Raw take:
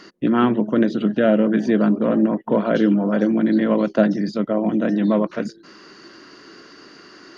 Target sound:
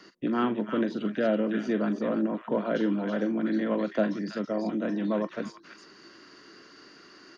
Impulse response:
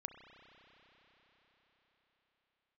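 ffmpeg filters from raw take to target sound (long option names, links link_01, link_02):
-filter_complex "[0:a]acrossover=split=190|490|1100[link_01][link_02][link_03][link_04];[link_01]acompressor=threshold=-35dB:ratio=6[link_05];[link_04]aecho=1:1:43|328:0.376|0.631[link_06];[link_05][link_02][link_03][link_06]amix=inputs=4:normalize=0,volume=-8.5dB"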